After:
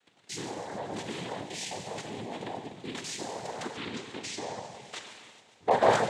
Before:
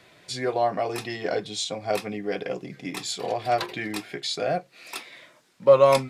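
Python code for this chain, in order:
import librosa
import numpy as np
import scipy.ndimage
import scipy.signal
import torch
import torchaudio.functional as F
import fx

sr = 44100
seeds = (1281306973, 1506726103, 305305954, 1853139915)

p1 = 10.0 ** (-20.0 / 20.0) * (np.abs((x / 10.0 ** (-20.0 / 20.0) + 3.0) % 4.0 - 2.0) - 1.0)
p2 = x + F.gain(torch.from_numpy(p1), -6.0).numpy()
p3 = fx.level_steps(p2, sr, step_db=17)
p4 = fx.rev_gated(p3, sr, seeds[0], gate_ms=450, shape='falling', drr_db=2.0)
p5 = fx.noise_vocoder(p4, sr, seeds[1], bands=6)
p6 = p5 + fx.echo_heads(p5, sr, ms=138, heads='first and third', feedback_pct=59, wet_db=-21, dry=0)
p7 = fx.env_lowpass_down(p6, sr, base_hz=900.0, full_db=-17.5, at=(3.7, 5.71))
y = F.gain(torch.from_numpy(p7), -4.5).numpy()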